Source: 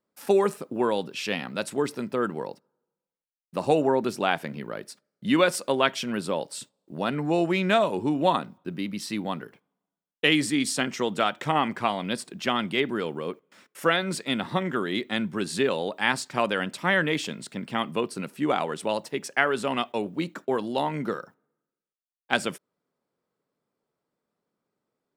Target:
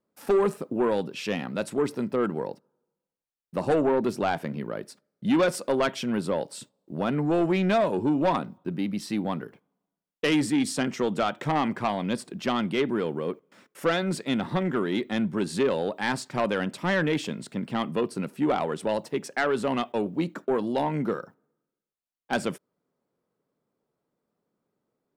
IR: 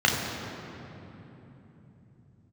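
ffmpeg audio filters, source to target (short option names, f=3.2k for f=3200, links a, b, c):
-af "tiltshelf=f=1.1k:g=4,asoftclip=type=tanh:threshold=-16.5dB"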